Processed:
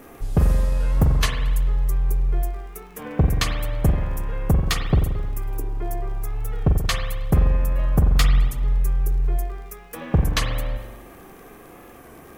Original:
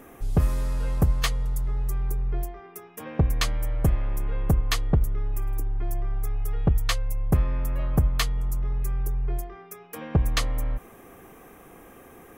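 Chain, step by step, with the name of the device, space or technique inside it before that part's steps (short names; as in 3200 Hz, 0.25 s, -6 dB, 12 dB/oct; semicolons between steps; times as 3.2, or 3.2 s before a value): 5.48–6.13 bell 480 Hz +6.5 dB 1.2 oct; warped LP (record warp 33 1/3 rpm, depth 100 cents; crackle 51/s -43 dBFS; pink noise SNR 40 dB); spring tank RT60 1.1 s, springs 44 ms, chirp 70 ms, DRR 4 dB; gain +2.5 dB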